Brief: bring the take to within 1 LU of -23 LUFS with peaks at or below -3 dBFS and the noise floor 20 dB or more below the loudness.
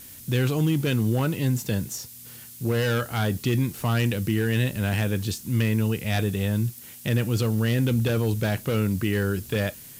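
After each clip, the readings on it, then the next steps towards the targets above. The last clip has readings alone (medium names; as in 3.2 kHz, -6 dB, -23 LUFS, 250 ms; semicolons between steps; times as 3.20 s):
noise floor -44 dBFS; noise floor target -45 dBFS; loudness -25.0 LUFS; peak level -12.0 dBFS; loudness target -23.0 LUFS
-> noise print and reduce 6 dB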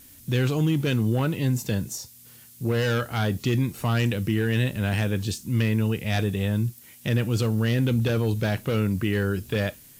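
noise floor -50 dBFS; loudness -25.0 LUFS; peak level -12.5 dBFS; loudness target -23.0 LUFS
-> trim +2 dB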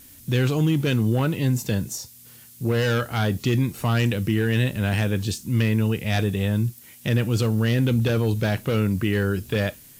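loudness -23.0 LUFS; peak level -10.5 dBFS; noise floor -48 dBFS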